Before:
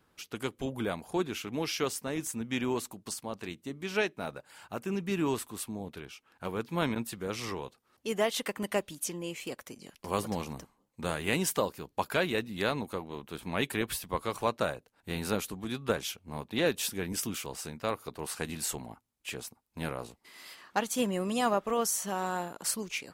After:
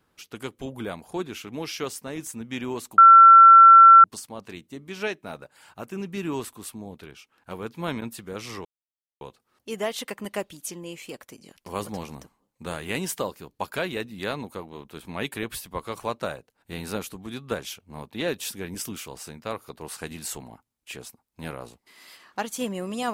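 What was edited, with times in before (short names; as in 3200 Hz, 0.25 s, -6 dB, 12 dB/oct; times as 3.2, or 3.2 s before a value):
2.98 add tone 1350 Hz -6.5 dBFS 1.06 s
7.59 insert silence 0.56 s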